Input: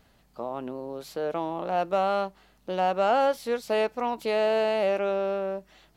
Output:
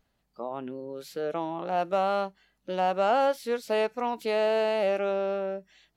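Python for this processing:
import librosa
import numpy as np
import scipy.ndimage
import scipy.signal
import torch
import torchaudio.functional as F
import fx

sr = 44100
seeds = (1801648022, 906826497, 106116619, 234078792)

y = fx.noise_reduce_blind(x, sr, reduce_db=12)
y = y * 10.0 ** (-1.0 / 20.0)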